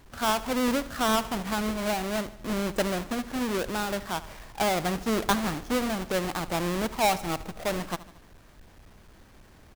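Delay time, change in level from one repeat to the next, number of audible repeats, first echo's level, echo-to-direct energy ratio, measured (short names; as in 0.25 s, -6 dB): 75 ms, -5.0 dB, 4, -17.0 dB, -15.5 dB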